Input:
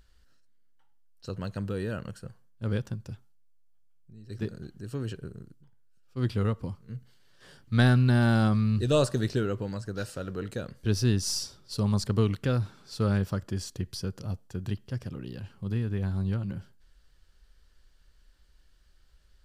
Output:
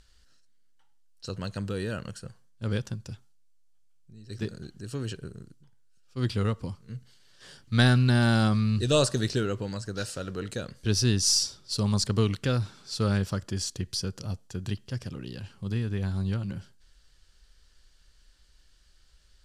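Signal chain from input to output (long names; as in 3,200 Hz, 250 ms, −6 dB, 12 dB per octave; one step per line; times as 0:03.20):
low-pass filter 8,400 Hz 12 dB per octave
high-shelf EQ 3,200 Hz +11.5 dB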